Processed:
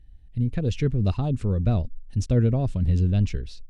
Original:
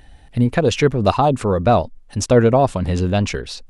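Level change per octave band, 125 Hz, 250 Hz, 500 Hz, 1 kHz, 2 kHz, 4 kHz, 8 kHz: -1.5 dB, -7.0 dB, -15.5 dB, -21.5 dB, -17.0 dB, -14.5 dB, under -15 dB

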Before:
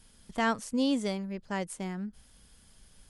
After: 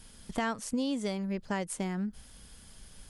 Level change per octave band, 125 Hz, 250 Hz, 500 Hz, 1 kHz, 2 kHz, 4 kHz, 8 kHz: +1.5 dB, -1.5 dB, -1.5 dB, -3.0 dB, -3.0 dB, -3.0 dB, +2.5 dB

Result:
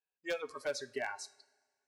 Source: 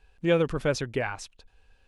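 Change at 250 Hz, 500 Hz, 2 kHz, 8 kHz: -20.5 dB, -12.5 dB, -7.5 dB, -5.5 dB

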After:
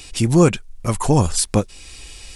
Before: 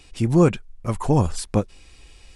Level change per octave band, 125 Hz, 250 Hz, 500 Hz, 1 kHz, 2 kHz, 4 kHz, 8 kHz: +3.0 dB, +2.5 dB, +3.0 dB, +3.5 dB, +6.0 dB, +10.5 dB, +13.0 dB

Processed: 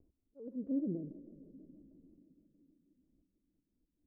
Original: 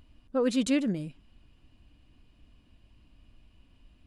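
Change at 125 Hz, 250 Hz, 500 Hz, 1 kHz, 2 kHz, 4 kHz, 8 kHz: -8.5 dB, -10.0 dB, -16.5 dB, under -30 dB, under -40 dB, under -40 dB, under -35 dB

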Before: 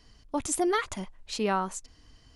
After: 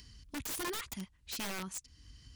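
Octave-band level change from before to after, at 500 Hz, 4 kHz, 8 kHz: -16.0 dB, -3.5 dB, -7.0 dB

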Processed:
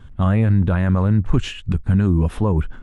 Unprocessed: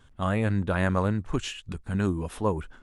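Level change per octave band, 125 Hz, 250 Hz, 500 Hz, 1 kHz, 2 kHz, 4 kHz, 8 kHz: +12.0 dB, +9.0 dB, +3.0 dB, +2.0 dB, +1.0 dB, +4.0 dB, no reading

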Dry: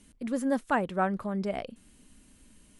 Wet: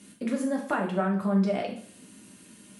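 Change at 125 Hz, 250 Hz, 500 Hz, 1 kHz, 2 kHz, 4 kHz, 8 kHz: +7.0 dB, +4.5 dB, +2.0 dB, -1.5 dB, -0.5 dB, +3.5 dB, no reading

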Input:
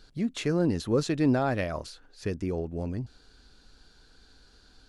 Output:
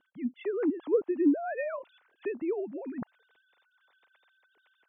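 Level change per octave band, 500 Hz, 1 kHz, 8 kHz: -0.5 dB, -6.0 dB, under -35 dB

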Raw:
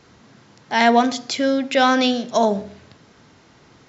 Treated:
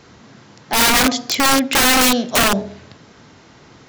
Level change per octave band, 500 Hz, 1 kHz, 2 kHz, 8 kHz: -3.0 dB, +0.5 dB, +6.0 dB, no reading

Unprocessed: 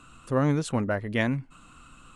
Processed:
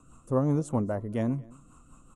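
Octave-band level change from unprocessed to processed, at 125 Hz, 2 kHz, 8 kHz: -1.5 dB, -16.5 dB, -6.0 dB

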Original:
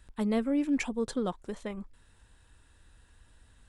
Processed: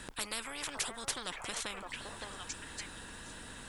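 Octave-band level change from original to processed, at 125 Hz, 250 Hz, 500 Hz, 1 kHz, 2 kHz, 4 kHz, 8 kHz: -8.5 dB, -20.0 dB, -12.5 dB, -0.5 dB, +2.5 dB, +9.0 dB, +10.5 dB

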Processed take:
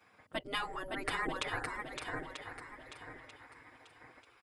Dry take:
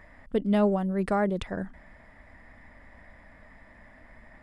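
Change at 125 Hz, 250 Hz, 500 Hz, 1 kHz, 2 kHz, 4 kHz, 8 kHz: -16.5 dB, -19.0 dB, -14.5 dB, -5.0 dB, +2.5 dB, +6.0 dB, no reading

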